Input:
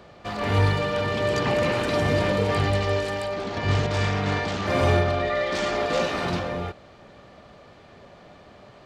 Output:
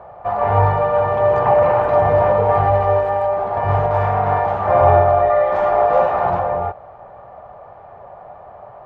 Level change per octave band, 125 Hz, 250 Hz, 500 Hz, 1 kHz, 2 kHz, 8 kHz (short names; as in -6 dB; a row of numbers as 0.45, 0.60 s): +3.0 dB, -3.5 dB, +10.0 dB, +13.5 dB, -1.0 dB, under -20 dB